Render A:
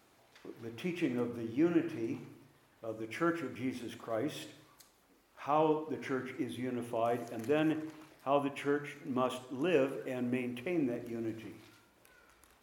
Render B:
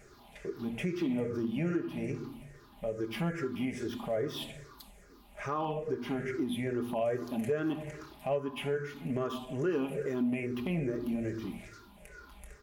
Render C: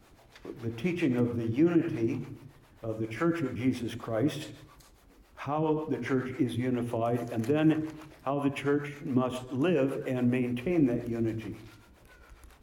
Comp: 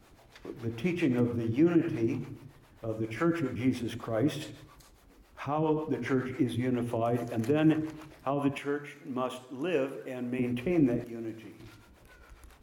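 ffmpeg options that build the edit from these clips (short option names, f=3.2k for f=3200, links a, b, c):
-filter_complex "[0:a]asplit=2[a][b];[2:a]asplit=3[c][d][e];[c]atrim=end=8.582[f];[a]atrim=start=8.578:end=10.392[g];[d]atrim=start=10.388:end=11.042[h];[b]atrim=start=11.038:end=11.602[i];[e]atrim=start=11.598[j];[f][g]acrossfade=d=0.004:c1=hsin:c2=hsin[k];[k][h]acrossfade=d=0.004:c1=hsin:c2=hsin[l];[l][i]acrossfade=d=0.004:c1=hsin:c2=hsin[m];[m][j]acrossfade=d=0.004:c1=hsin:c2=hsin"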